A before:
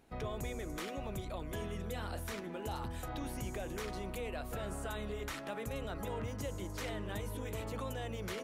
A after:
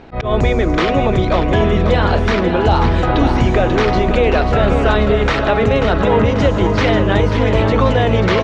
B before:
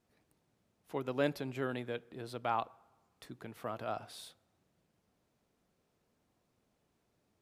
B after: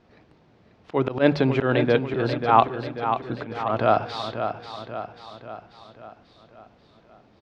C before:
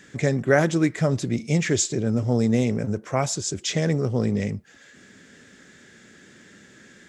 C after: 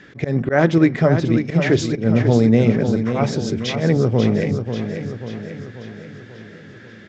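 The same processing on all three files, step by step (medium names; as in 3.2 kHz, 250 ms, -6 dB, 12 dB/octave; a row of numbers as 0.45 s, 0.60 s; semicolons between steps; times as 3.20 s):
low-pass 5.1 kHz 24 dB/octave; treble shelf 3.5 kHz -8 dB; hum notches 50/100/150/200/250 Hz; slow attack 123 ms; on a send: feedback delay 539 ms, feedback 54%, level -8 dB; on the sum: peak normalisation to -1.5 dBFS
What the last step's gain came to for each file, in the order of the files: +27.0 dB, +20.0 dB, +7.0 dB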